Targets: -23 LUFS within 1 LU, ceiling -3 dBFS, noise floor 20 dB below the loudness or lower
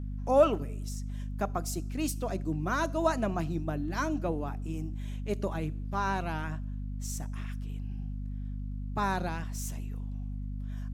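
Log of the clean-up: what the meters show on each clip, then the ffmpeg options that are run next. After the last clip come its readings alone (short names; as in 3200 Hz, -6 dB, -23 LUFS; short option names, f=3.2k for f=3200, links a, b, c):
hum 50 Hz; harmonics up to 250 Hz; hum level -33 dBFS; loudness -33.0 LUFS; peak -11.5 dBFS; loudness target -23.0 LUFS
-> -af "bandreject=f=50:t=h:w=6,bandreject=f=100:t=h:w=6,bandreject=f=150:t=h:w=6,bandreject=f=200:t=h:w=6,bandreject=f=250:t=h:w=6"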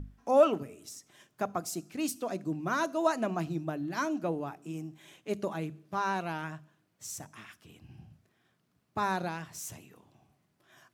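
hum none; loudness -33.0 LUFS; peak -11.0 dBFS; loudness target -23.0 LUFS
-> -af "volume=10dB,alimiter=limit=-3dB:level=0:latency=1"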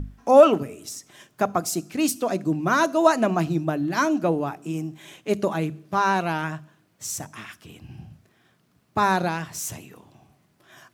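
loudness -23.0 LUFS; peak -3.0 dBFS; noise floor -65 dBFS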